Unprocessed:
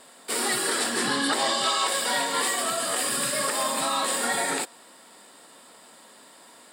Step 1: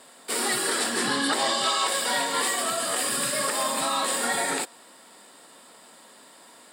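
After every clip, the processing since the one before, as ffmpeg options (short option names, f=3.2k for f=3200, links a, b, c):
-af "highpass=69"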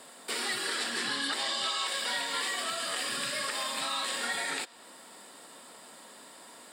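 -filter_complex "[0:a]acrossover=split=1600|5400[a][b][c];[a]acompressor=threshold=-41dB:ratio=4[d];[b]acompressor=threshold=-31dB:ratio=4[e];[c]acompressor=threshold=-45dB:ratio=4[f];[d][e][f]amix=inputs=3:normalize=0"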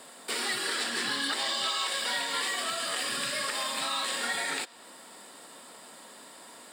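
-af "acrusher=bits=6:mode=log:mix=0:aa=0.000001,volume=1.5dB"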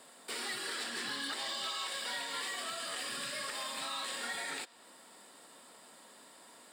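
-af "volume=24.5dB,asoftclip=hard,volume=-24.5dB,volume=-7.5dB"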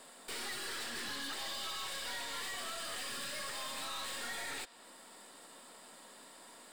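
-af "aeval=exprs='(tanh(126*val(0)+0.5)-tanh(0.5))/126':c=same,volume=3.5dB"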